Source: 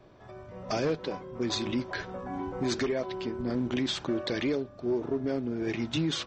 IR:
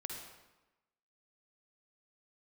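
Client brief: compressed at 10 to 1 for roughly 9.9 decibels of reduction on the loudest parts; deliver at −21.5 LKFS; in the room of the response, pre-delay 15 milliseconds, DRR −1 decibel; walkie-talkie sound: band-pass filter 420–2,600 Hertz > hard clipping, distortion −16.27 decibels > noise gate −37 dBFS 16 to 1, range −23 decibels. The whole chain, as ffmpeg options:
-filter_complex "[0:a]acompressor=threshold=-35dB:ratio=10,asplit=2[link_01][link_02];[1:a]atrim=start_sample=2205,adelay=15[link_03];[link_02][link_03]afir=irnorm=-1:irlink=0,volume=2dB[link_04];[link_01][link_04]amix=inputs=2:normalize=0,highpass=420,lowpass=2600,asoftclip=type=hard:threshold=-34.5dB,agate=range=-23dB:threshold=-37dB:ratio=16,volume=24.5dB"

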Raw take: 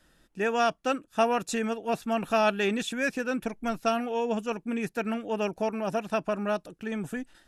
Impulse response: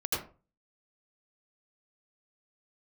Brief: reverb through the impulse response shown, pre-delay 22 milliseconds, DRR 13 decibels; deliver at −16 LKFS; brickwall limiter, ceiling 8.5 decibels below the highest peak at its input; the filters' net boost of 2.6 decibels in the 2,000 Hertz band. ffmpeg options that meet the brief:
-filter_complex "[0:a]equalizer=frequency=2000:width_type=o:gain=3.5,alimiter=limit=-20.5dB:level=0:latency=1,asplit=2[link_01][link_02];[1:a]atrim=start_sample=2205,adelay=22[link_03];[link_02][link_03]afir=irnorm=-1:irlink=0,volume=-19.5dB[link_04];[link_01][link_04]amix=inputs=2:normalize=0,volume=15.5dB"

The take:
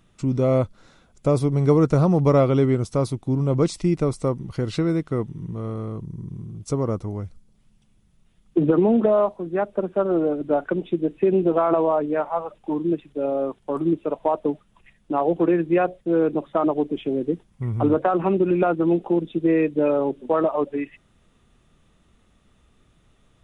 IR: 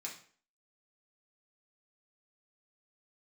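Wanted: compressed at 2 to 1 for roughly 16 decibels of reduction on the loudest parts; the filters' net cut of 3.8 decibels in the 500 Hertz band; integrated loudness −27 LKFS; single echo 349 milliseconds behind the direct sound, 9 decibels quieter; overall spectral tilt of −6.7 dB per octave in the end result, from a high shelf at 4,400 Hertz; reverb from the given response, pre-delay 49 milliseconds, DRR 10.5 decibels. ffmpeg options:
-filter_complex "[0:a]equalizer=frequency=500:width_type=o:gain=-5,highshelf=frequency=4400:gain=3.5,acompressor=threshold=-46dB:ratio=2,aecho=1:1:349:0.355,asplit=2[link_01][link_02];[1:a]atrim=start_sample=2205,adelay=49[link_03];[link_02][link_03]afir=irnorm=-1:irlink=0,volume=-9dB[link_04];[link_01][link_04]amix=inputs=2:normalize=0,volume=11dB"

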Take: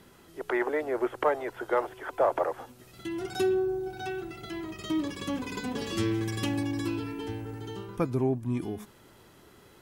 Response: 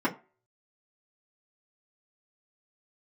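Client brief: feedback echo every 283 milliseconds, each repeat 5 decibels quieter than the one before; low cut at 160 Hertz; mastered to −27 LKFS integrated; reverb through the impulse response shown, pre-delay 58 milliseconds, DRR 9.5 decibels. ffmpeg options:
-filter_complex "[0:a]highpass=160,aecho=1:1:283|566|849|1132|1415|1698|1981:0.562|0.315|0.176|0.0988|0.0553|0.031|0.0173,asplit=2[link_01][link_02];[1:a]atrim=start_sample=2205,adelay=58[link_03];[link_02][link_03]afir=irnorm=-1:irlink=0,volume=-20.5dB[link_04];[link_01][link_04]amix=inputs=2:normalize=0,volume=3dB"

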